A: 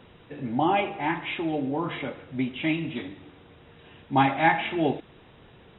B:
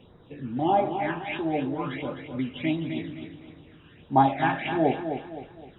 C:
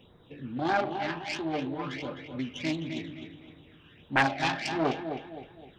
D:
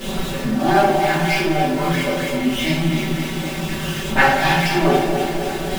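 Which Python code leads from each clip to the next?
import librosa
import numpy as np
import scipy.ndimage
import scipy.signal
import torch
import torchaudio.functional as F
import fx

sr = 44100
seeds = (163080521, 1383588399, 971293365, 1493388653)

y1 = fx.dynamic_eq(x, sr, hz=700.0, q=2.0, threshold_db=-38.0, ratio=4.0, max_db=7)
y1 = fx.phaser_stages(y1, sr, stages=12, low_hz=640.0, high_hz=2800.0, hz=1.5, feedback_pct=20)
y1 = fx.echo_feedback(y1, sr, ms=258, feedback_pct=39, wet_db=-8.0)
y1 = y1 * 10.0 ** (-1.0 / 20.0)
y2 = fx.self_delay(y1, sr, depth_ms=0.44)
y2 = fx.high_shelf(y2, sr, hz=3200.0, db=10.5)
y2 = y2 * 10.0 ** (-4.5 / 20.0)
y3 = y2 + 0.5 * 10.0 ** (-29.5 / 20.0) * np.sign(y2)
y3 = y3 + 0.99 * np.pad(y3, (int(5.2 * sr / 1000.0), 0))[:len(y3)]
y3 = fx.room_shoebox(y3, sr, seeds[0], volume_m3=190.0, walls='mixed', distance_m=2.6)
y3 = y3 * 10.0 ** (-2.5 / 20.0)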